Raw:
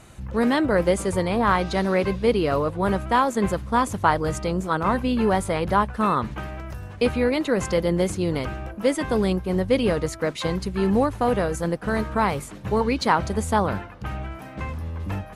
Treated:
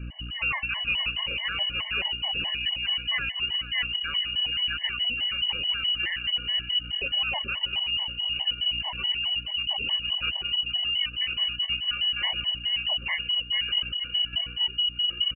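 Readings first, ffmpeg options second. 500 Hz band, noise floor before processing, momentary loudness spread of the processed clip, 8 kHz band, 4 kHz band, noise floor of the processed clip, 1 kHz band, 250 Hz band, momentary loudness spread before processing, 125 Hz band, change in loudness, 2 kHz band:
-27.0 dB, -40 dBFS, 3 LU, under -40 dB, +16.0 dB, -39 dBFS, -18.5 dB, -26.0 dB, 11 LU, -16.5 dB, -2.0 dB, +1.0 dB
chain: -filter_complex "[0:a]asplit=2[s0][s1];[s1]adelay=472,lowpass=f=1500:p=1,volume=0.316,asplit=2[s2][s3];[s3]adelay=472,lowpass=f=1500:p=1,volume=0.47,asplit=2[s4][s5];[s5]adelay=472,lowpass=f=1500:p=1,volume=0.47,asplit=2[s6][s7];[s7]adelay=472,lowpass=f=1500:p=1,volume=0.47,asplit=2[s8][s9];[s9]adelay=472,lowpass=f=1500:p=1,volume=0.47[s10];[s0][s2][s4][s6][s8][s10]amix=inputs=6:normalize=0,asubboost=boost=11:cutoff=110,lowpass=f=2600:t=q:w=0.5098,lowpass=f=2600:t=q:w=0.6013,lowpass=f=2600:t=q:w=0.9,lowpass=f=2600:t=q:w=2.563,afreqshift=-3000,aeval=exprs='val(0)+0.00562*(sin(2*PI*60*n/s)+sin(2*PI*2*60*n/s)/2+sin(2*PI*3*60*n/s)/3+sin(2*PI*4*60*n/s)/4+sin(2*PI*5*60*n/s)/5)':c=same,areverse,acompressor=threshold=0.0708:ratio=6,areverse,tiltshelf=f=700:g=6,afftfilt=real='re*gt(sin(2*PI*4.7*pts/sr)*(1-2*mod(floor(b*sr/1024/570),2)),0)':imag='im*gt(sin(2*PI*4.7*pts/sr)*(1-2*mod(floor(b*sr/1024/570),2)),0)':win_size=1024:overlap=0.75,volume=1.88"

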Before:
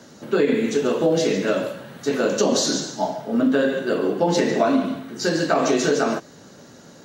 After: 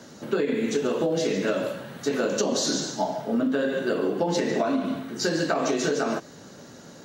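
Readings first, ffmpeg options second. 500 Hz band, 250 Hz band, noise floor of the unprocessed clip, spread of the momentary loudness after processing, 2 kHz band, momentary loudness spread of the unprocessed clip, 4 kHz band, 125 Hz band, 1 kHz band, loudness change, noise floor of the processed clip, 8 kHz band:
-5.0 dB, -4.5 dB, -47 dBFS, 7 LU, -4.0 dB, 7 LU, -3.5 dB, -4.0 dB, -5.0 dB, -4.5 dB, -47 dBFS, -3.5 dB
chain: -af "acompressor=threshold=0.0891:ratio=6"

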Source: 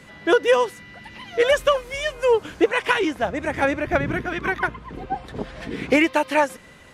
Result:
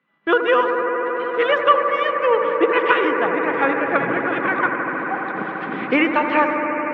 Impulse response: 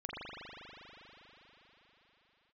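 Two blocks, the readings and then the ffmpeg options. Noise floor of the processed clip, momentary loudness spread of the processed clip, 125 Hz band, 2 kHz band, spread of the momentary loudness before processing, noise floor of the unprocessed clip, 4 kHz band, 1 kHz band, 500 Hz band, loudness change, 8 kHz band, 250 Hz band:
-28 dBFS, 7 LU, -5.0 dB, +4.0 dB, 14 LU, -46 dBFS, -1.5 dB, +6.5 dB, +1.5 dB, +3.0 dB, under -25 dB, +2.5 dB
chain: -filter_complex "[0:a]highpass=f=170:w=0.5412,highpass=f=170:w=1.3066,equalizer=f=420:t=q:w=4:g=-3,equalizer=f=640:t=q:w=4:g=-5,equalizer=f=1200:t=q:w=4:g=9,lowpass=f=3200:w=0.5412,lowpass=f=3200:w=1.3066,agate=range=0.0562:threshold=0.0112:ratio=16:detection=peak,asplit=2[s0][s1];[1:a]atrim=start_sample=2205,asetrate=25578,aresample=44100[s2];[s1][s2]afir=irnorm=-1:irlink=0,volume=0.596[s3];[s0][s3]amix=inputs=2:normalize=0,volume=0.75"

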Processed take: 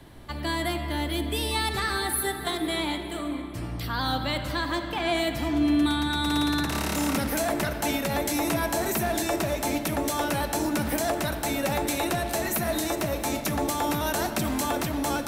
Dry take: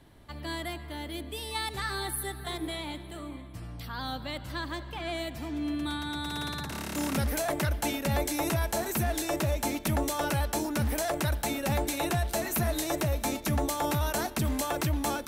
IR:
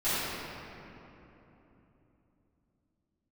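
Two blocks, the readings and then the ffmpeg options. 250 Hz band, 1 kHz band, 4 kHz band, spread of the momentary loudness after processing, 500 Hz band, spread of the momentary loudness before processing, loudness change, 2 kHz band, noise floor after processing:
+6.0 dB, +5.0 dB, +5.5 dB, 4 LU, +4.5 dB, 8 LU, +4.0 dB, +5.5 dB, -34 dBFS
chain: -filter_complex "[0:a]acrossover=split=200|3000[s0][s1][s2];[s0]acompressor=threshold=0.00794:ratio=3[s3];[s3][s1][s2]amix=inputs=3:normalize=0,alimiter=level_in=1.12:limit=0.0631:level=0:latency=1:release=316,volume=0.891,asplit=2[s4][s5];[1:a]atrim=start_sample=2205[s6];[s5][s6]afir=irnorm=-1:irlink=0,volume=0.119[s7];[s4][s7]amix=inputs=2:normalize=0,volume=2.37"

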